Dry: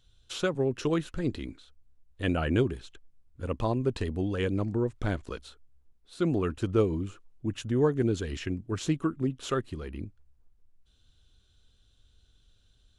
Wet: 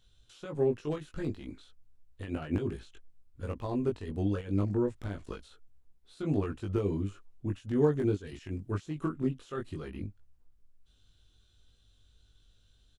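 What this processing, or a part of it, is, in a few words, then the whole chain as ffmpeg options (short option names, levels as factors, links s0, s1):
de-esser from a sidechain: -filter_complex "[0:a]asettb=1/sr,asplit=3[s0][s1][s2];[s0]atrim=end=8.274[s3];[s1]atrim=start=8.27:end=8.72,asetpts=PTS-STARTPTS,afade=t=in:d=0.004:c=qsin,afade=t=out:st=0.446:d=0.004:c=qsin,highshelf=f=5400:g=7[s4];[s2]atrim=start=8.716[s5];[s3][s4]acrossfade=d=0.004:c1=hsin:c2=qsin[s6];[s6][s5]acrossfade=d=0.004:c1=qsin:c2=hsin,asplit=2[s7][s8];[s8]highpass=5000,apad=whole_len=572480[s9];[s7][s9]sidechaincompress=threshold=0.00178:ratio=16:attack=0.63:release=68,asplit=2[s10][s11];[s11]adelay=20,volume=0.75[s12];[s10][s12]amix=inputs=2:normalize=0,volume=0.75"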